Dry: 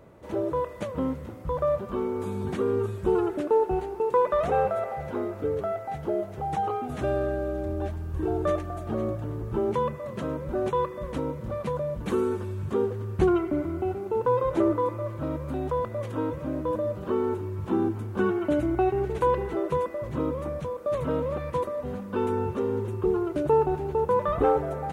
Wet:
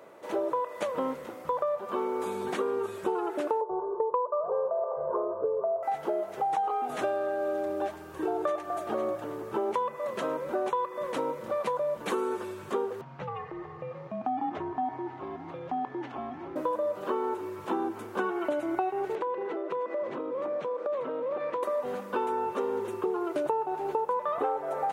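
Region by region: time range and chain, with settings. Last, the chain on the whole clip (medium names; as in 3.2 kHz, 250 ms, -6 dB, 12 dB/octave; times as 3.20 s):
3.61–5.83 s: elliptic low-pass 1.2 kHz, stop band 50 dB + comb 1.9 ms, depth 94%
13.01–16.56 s: distance through air 210 m + compression 2:1, threshold -30 dBFS + frequency shift -240 Hz
19.15–21.63 s: band-pass 280–3700 Hz + bass shelf 460 Hz +11.5 dB + compression 10:1, threshold -31 dBFS
whole clip: high-pass 440 Hz 12 dB/octave; dynamic bell 890 Hz, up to +6 dB, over -40 dBFS, Q 1.7; compression 10:1, threshold -31 dBFS; trim +5 dB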